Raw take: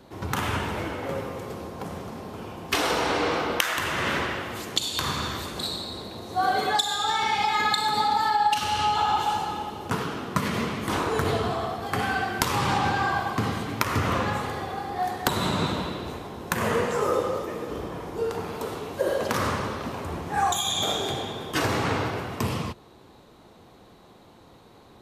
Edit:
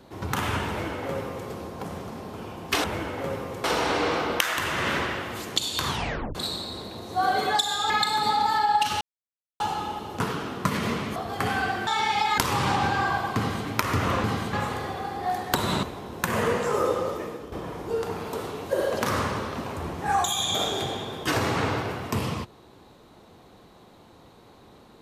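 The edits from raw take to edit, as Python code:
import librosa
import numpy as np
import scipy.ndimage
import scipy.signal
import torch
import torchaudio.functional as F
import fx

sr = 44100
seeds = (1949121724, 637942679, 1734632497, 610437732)

y = fx.edit(x, sr, fx.duplicate(start_s=0.69, length_s=0.8, to_s=2.84),
    fx.tape_stop(start_s=5.08, length_s=0.47),
    fx.move(start_s=7.1, length_s=0.51, to_s=12.4),
    fx.silence(start_s=8.72, length_s=0.59),
    fx.cut(start_s=10.87, length_s=0.82),
    fx.duplicate(start_s=13.39, length_s=0.29, to_s=14.26),
    fx.cut(start_s=15.56, length_s=0.55),
    fx.fade_out_to(start_s=17.49, length_s=0.31, floor_db=-11.0), tone=tone)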